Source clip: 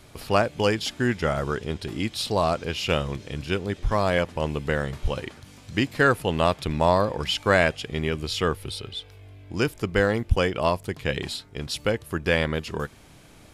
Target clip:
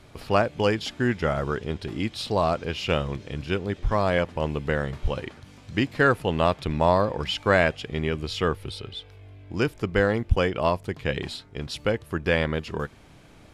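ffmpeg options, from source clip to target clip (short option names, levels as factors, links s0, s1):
-af "lowpass=f=3600:p=1"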